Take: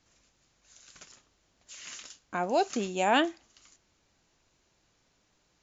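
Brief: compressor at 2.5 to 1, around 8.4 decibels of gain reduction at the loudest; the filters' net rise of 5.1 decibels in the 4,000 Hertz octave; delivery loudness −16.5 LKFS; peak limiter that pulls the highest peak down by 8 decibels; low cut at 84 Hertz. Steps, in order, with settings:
high-pass filter 84 Hz
parametric band 4,000 Hz +7.5 dB
downward compressor 2.5 to 1, threshold −32 dBFS
level +22.5 dB
brickwall limiter −3.5 dBFS

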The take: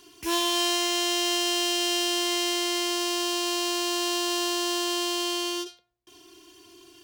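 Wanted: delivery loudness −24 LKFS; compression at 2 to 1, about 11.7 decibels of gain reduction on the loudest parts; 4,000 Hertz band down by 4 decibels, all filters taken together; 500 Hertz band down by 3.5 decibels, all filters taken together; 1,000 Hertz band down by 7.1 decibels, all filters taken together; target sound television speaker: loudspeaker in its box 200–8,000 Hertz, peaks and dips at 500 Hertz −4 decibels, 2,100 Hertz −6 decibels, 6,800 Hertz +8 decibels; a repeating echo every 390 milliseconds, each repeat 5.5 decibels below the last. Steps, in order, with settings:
parametric band 500 Hz −4 dB
parametric band 1,000 Hz −7 dB
parametric band 4,000 Hz −5 dB
downward compressor 2 to 1, threshold −48 dBFS
loudspeaker in its box 200–8,000 Hz, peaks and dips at 500 Hz −4 dB, 2,100 Hz −6 dB, 6,800 Hz +8 dB
repeating echo 390 ms, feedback 53%, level −5.5 dB
level +14.5 dB

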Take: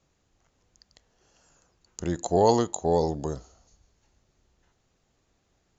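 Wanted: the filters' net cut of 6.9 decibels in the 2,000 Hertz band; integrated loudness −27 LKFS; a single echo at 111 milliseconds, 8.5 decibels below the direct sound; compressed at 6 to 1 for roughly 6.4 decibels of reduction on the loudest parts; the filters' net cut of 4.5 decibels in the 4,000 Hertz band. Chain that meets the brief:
parametric band 2,000 Hz −8 dB
parametric band 4,000 Hz −3.5 dB
downward compressor 6 to 1, threshold −23 dBFS
single-tap delay 111 ms −8.5 dB
level +3 dB

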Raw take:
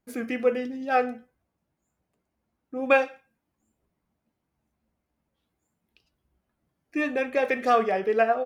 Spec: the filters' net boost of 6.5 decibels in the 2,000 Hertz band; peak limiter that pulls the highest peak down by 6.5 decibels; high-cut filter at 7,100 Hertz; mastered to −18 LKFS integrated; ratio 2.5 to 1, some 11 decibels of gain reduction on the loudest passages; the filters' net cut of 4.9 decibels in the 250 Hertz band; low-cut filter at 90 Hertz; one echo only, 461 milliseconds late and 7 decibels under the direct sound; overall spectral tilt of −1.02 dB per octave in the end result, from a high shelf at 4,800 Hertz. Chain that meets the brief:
high-pass filter 90 Hz
low-pass filter 7,100 Hz
parametric band 250 Hz −5.5 dB
parametric band 2,000 Hz +7.5 dB
high-shelf EQ 4,800 Hz +6 dB
downward compressor 2.5 to 1, threshold −28 dBFS
brickwall limiter −20.5 dBFS
single-tap delay 461 ms −7 dB
level +14.5 dB

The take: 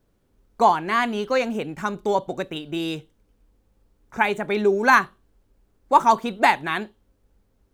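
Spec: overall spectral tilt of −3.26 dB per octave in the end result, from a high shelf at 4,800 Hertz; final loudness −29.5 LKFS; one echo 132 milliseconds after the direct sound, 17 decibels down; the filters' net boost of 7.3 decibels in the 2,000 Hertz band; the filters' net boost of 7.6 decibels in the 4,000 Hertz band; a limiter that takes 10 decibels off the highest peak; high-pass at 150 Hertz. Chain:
high-pass filter 150 Hz
parametric band 2,000 Hz +7.5 dB
parametric band 4,000 Hz +3.5 dB
high-shelf EQ 4,800 Hz +7.5 dB
brickwall limiter −7.5 dBFS
single-tap delay 132 ms −17 dB
level −8 dB

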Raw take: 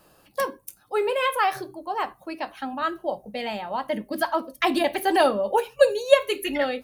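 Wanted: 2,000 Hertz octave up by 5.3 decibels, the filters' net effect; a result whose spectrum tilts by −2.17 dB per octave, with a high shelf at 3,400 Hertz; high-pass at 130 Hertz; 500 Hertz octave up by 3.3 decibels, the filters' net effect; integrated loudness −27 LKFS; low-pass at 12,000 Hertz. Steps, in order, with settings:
high-pass filter 130 Hz
low-pass filter 12,000 Hz
parametric band 500 Hz +3.5 dB
parametric band 2,000 Hz +4.5 dB
high-shelf EQ 3,400 Hz +6.5 dB
level −5.5 dB

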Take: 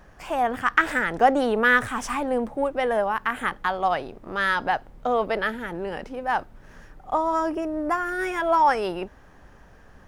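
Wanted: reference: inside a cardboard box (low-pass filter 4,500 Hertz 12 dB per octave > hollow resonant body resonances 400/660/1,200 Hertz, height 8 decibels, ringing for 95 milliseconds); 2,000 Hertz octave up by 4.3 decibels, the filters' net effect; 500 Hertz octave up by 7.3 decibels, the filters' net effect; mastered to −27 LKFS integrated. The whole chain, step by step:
low-pass filter 4,500 Hz 12 dB per octave
parametric band 500 Hz +8.5 dB
parametric band 2,000 Hz +5 dB
hollow resonant body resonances 400/660/1,200 Hz, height 8 dB, ringing for 95 ms
level −9 dB

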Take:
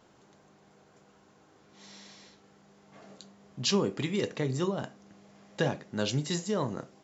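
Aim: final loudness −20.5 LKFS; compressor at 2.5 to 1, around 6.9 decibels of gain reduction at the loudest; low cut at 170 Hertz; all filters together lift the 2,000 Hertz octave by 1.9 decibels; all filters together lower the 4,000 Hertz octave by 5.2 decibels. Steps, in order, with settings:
high-pass filter 170 Hz
parametric band 2,000 Hz +4.5 dB
parametric band 4,000 Hz −8.5 dB
downward compressor 2.5 to 1, threshold −33 dBFS
level +16.5 dB

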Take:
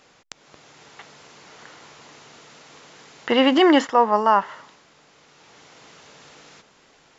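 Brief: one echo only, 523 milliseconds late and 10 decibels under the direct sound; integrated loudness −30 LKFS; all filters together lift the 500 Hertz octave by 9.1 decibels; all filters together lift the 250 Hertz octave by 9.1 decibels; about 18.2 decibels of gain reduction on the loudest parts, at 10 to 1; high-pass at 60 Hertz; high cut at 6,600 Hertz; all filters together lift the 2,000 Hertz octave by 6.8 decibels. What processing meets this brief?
high-pass filter 60 Hz
low-pass filter 6,600 Hz
parametric band 250 Hz +8 dB
parametric band 500 Hz +8.5 dB
parametric band 2,000 Hz +7.5 dB
downward compressor 10 to 1, threshold −23 dBFS
single-tap delay 523 ms −10 dB
level +2.5 dB

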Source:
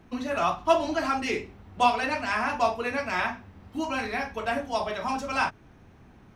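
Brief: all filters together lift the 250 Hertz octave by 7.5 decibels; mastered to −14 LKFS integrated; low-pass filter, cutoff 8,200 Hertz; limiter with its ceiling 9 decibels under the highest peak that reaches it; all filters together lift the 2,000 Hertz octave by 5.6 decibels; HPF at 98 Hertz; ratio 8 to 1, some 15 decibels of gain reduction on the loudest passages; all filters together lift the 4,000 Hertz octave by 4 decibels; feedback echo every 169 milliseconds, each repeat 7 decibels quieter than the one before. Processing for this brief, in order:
high-pass filter 98 Hz
low-pass filter 8,200 Hz
parametric band 250 Hz +8.5 dB
parametric band 2,000 Hz +6.5 dB
parametric band 4,000 Hz +3 dB
downward compressor 8 to 1, threshold −29 dBFS
brickwall limiter −26 dBFS
repeating echo 169 ms, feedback 45%, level −7 dB
level +21 dB

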